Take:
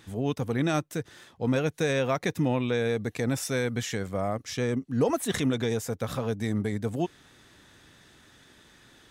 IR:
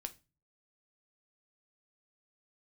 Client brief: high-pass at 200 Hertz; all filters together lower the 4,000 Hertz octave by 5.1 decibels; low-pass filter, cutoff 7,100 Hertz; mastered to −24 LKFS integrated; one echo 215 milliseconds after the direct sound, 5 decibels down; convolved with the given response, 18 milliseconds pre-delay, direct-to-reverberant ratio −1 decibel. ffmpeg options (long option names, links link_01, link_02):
-filter_complex "[0:a]highpass=200,lowpass=7100,equalizer=frequency=4000:width_type=o:gain=-6,aecho=1:1:215:0.562,asplit=2[link_01][link_02];[1:a]atrim=start_sample=2205,adelay=18[link_03];[link_02][link_03]afir=irnorm=-1:irlink=0,volume=4dB[link_04];[link_01][link_04]amix=inputs=2:normalize=0,volume=2dB"